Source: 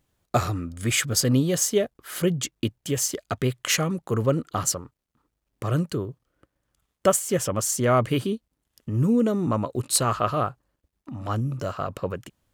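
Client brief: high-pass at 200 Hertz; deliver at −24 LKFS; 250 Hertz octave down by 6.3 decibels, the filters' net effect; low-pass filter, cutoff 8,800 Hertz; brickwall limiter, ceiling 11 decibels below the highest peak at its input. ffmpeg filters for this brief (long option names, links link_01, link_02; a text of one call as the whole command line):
ffmpeg -i in.wav -af "highpass=200,lowpass=8800,equalizer=frequency=250:width_type=o:gain=-5.5,volume=6.5dB,alimiter=limit=-11dB:level=0:latency=1" out.wav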